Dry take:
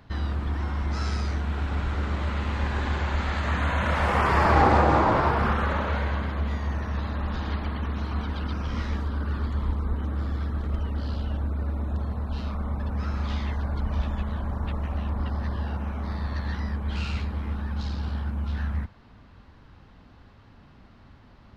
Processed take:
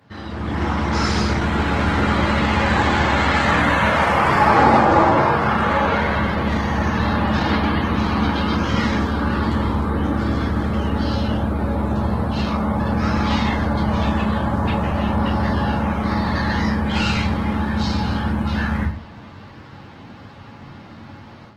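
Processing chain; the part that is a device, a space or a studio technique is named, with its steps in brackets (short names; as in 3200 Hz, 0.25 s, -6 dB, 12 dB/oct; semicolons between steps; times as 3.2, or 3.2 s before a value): bell 2000 Hz +2 dB 0.27 oct; notches 50/100/150/200 Hz; far-field microphone of a smart speaker (reverb RT60 0.40 s, pre-delay 11 ms, DRR -1 dB; HPF 88 Hz 24 dB/oct; AGC gain up to 12 dB; gain -1 dB; Opus 16 kbps 48000 Hz)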